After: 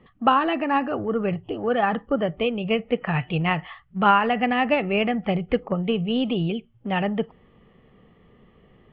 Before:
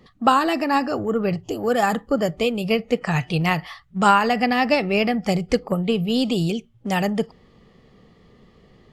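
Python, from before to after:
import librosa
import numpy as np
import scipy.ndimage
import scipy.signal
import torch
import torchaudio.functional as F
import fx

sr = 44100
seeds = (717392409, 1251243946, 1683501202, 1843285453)

y = scipy.signal.sosfilt(scipy.signal.ellip(4, 1.0, 60, 3100.0, 'lowpass', fs=sr, output='sos'), x)
y = y * 10.0 ** (-1.5 / 20.0)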